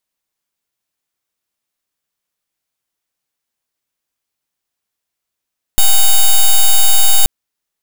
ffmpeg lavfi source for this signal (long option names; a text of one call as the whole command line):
ffmpeg -f lavfi -i "aevalsrc='0.473*(2*lt(mod(3740*t,1),0.05)-1)':duration=1.48:sample_rate=44100" out.wav